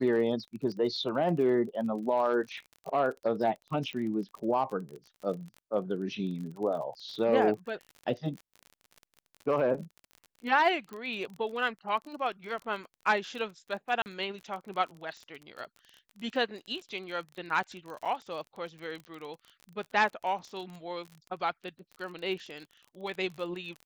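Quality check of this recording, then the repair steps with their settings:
surface crackle 33 per second −38 dBFS
0:03.93: click −25 dBFS
0:10.93: click −28 dBFS
0:14.02–0:14.06: drop-out 39 ms
0:18.05–0:18.06: drop-out 6.4 ms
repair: click removal
repair the gap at 0:14.02, 39 ms
repair the gap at 0:18.05, 6.4 ms

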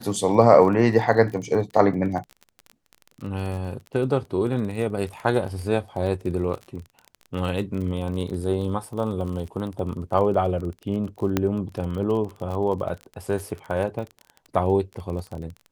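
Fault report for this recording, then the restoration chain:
surface crackle 26 per second −31 dBFS
0:11.37: click −7 dBFS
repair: click removal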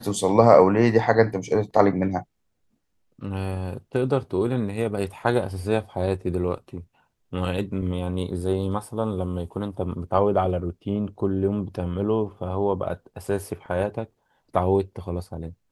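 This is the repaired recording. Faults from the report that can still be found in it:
none of them is left

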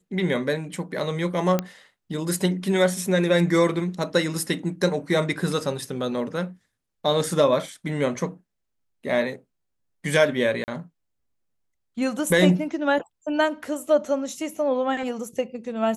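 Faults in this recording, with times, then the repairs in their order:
0:01.59: click −10 dBFS
0:10.64–0:10.68: drop-out 39 ms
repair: click removal
repair the gap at 0:10.64, 39 ms

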